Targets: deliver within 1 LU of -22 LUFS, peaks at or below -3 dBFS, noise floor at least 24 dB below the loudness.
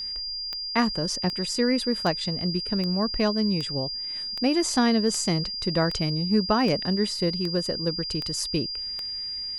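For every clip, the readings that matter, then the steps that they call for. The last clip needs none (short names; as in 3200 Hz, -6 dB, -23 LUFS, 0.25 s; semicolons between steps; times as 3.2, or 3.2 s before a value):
clicks 12; steady tone 4800 Hz; tone level -30 dBFS; loudness -25.5 LUFS; peak -9.5 dBFS; loudness target -22.0 LUFS
-> de-click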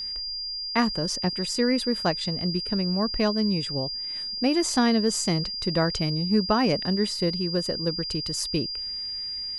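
clicks 0; steady tone 4800 Hz; tone level -30 dBFS
-> notch 4800 Hz, Q 30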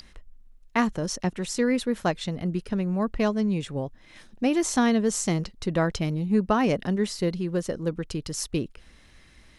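steady tone none; loudness -26.5 LUFS; peak -10.0 dBFS; loudness target -22.0 LUFS
-> gain +4.5 dB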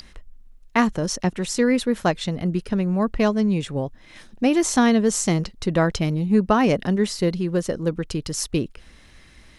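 loudness -22.0 LUFS; peak -5.5 dBFS; noise floor -50 dBFS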